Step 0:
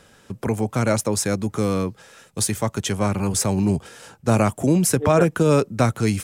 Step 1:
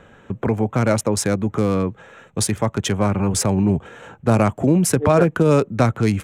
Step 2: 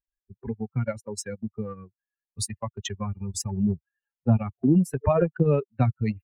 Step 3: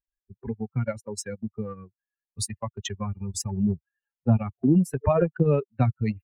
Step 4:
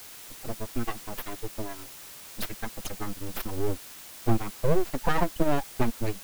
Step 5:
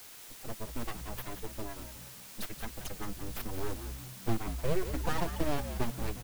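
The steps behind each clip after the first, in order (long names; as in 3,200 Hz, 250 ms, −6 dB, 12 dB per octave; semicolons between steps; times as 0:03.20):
adaptive Wiener filter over 9 samples; high-shelf EQ 10,000 Hz −7 dB; in parallel at +0.5 dB: downward compressor, threshold −27 dBFS, peak gain reduction 14.5 dB
spectral dynamics exaggerated over time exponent 3; low-shelf EQ 450 Hz +6.5 dB; transient designer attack +3 dB, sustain −10 dB; level −6 dB
no processing that can be heard
full-wave rectification; in parallel at −4.5 dB: bit-depth reduction 6 bits, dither triangular; on the sum: level −4.5 dB
in parallel at −9.5 dB: wrap-around overflow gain 22 dB; on the sum: echo with shifted repeats 179 ms, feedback 44%, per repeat −64 Hz, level −9.5 dB; level −7.5 dB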